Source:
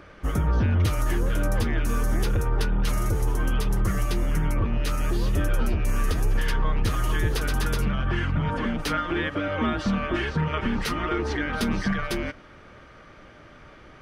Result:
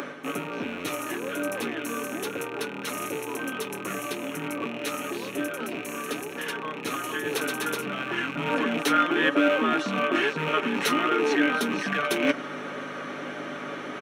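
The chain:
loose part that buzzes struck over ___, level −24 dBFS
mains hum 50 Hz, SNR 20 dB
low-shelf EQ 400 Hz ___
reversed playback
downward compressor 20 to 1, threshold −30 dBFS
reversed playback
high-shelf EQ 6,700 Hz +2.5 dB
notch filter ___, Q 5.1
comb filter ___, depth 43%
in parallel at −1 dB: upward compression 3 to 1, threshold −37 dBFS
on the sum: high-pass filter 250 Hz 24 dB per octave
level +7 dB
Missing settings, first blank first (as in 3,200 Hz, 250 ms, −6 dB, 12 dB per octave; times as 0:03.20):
−33 dBFS, +4 dB, 4,800 Hz, 7.1 ms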